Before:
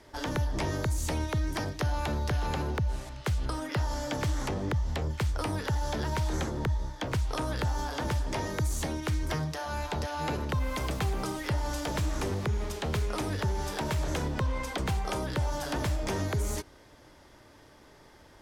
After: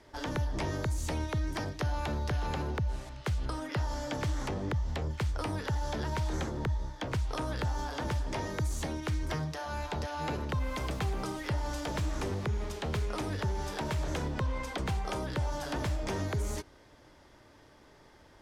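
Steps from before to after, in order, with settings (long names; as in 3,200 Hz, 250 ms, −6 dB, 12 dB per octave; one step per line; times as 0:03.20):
high-shelf EQ 10,000 Hz −8 dB
level −2.5 dB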